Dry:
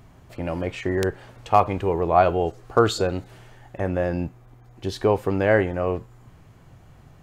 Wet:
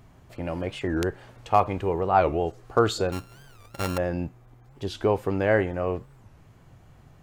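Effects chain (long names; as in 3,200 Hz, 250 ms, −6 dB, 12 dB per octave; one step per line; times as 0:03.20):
0:03.12–0:03.98: samples sorted by size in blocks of 32 samples
wow of a warped record 45 rpm, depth 250 cents
level −3 dB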